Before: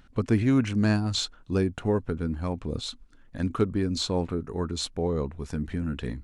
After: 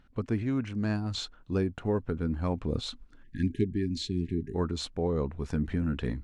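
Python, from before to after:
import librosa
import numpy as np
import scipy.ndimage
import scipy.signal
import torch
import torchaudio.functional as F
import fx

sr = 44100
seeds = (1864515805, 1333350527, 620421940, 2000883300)

y = fx.spec_erase(x, sr, start_s=3.23, length_s=1.32, low_hz=420.0, high_hz=1600.0)
y = fx.rider(y, sr, range_db=10, speed_s=0.5)
y = fx.lowpass(y, sr, hz=3500.0, slope=6)
y = F.gain(torch.from_numpy(y), -3.0).numpy()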